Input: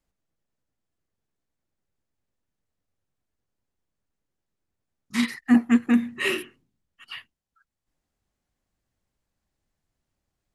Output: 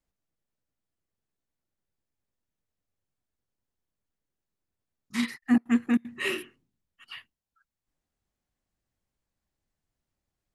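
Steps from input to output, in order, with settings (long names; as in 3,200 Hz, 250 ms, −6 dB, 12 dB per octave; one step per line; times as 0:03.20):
0:05.36–0:06.15: gate pattern "xxxx.xx." 191 BPM −24 dB
level −4.5 dB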